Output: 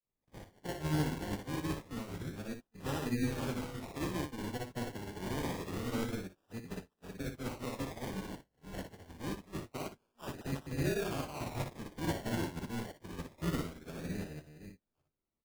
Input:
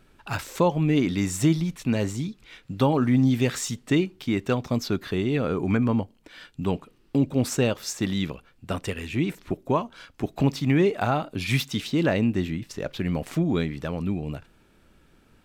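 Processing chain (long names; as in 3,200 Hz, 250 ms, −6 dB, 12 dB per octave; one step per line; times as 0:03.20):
delay that plays each chunk backwards 312 ms, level −4.5 dB
first-order pre-emphasis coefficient 0.8
gate on every frequency bin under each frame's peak −30 dB strong
high-shelf EQ 3,200 Hz −10 dB
brickwall limiter −32 dBFS, peak gain reduction 9.5 dB
amplitude modulation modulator 230 Hz, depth 70%
all-pass dispersion lows, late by 53 ms, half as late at 1,100 Hz
sample-and-hold swept by an LFO 28×, swing 60% 0.26 Hz
ambience of single reflections 59 ms −3 dB, 79 ms −12.5 dB
expander for the loud parts 2.5 to 1, over −57 dBFS
level +10 dB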